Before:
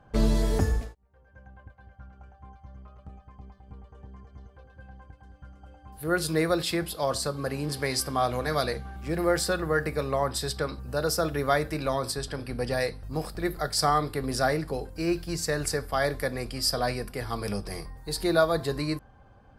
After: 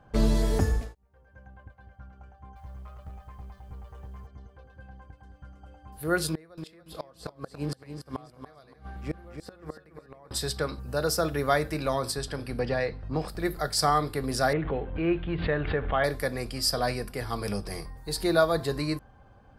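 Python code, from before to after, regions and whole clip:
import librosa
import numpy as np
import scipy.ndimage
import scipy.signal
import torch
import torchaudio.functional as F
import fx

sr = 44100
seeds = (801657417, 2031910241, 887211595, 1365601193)

y = fx.chain(x, sr, fx.law_mismatch(coded='mu'),
    fx.peak_eq(hz=260.0, db=-8.0, octaves=1.3), at=(2.56, 4.27))
y = fx.chain(y, sr, fx.high_shelf(hz=4700.0, db=-8.0),
    fx.gate_flip(shuts_db=-20.0, range_db=-27),
    fx.echo_feedback(ms=285, feedback_pct=22, wet_db=-8.5), at=(6.29, 10.31))
y = fx.chain(y, sr, fx.lowpass(hz=3200.0, slope=12),
    fx.band_squash(depth_pct=70), at=(12.59, 13.28))
y = fx.chain(y, sr, fx.law_mismatch(coded='mu'),
    fx.steep_lowpass(hz=3500.0, slope=72),
    fx.pre_swell(db_per_s=73.0), at=(14.53, 16.04))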